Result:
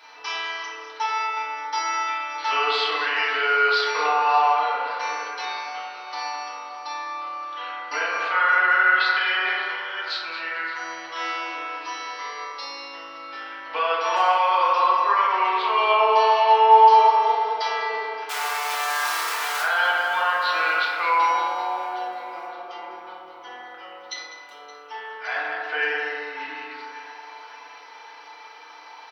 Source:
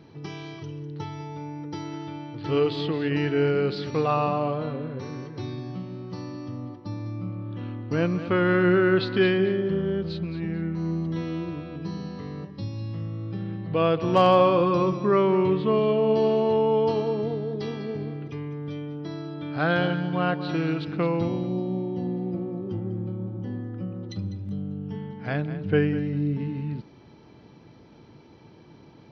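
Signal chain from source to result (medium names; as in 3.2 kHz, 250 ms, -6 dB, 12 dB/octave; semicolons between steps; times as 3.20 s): 18.29–19.62 s: one-bit comparator; high-pass 890 Hz 24 dB/octave; in parallel at -1.5 dB: compression, threshold -40 dBFS, peak gain reduction 18 dB; on the sum: peak limiter -24 dBFS, peak gain reduction 10 dB; on a send: feedback delay 570 ms, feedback 58%, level -17.5 dB; on the sum: FDN reverb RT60 1.8 s, low-frequency decay 0.75×, high-frequency decay 0.3×, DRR -7.5 dB; trim +4.5 dB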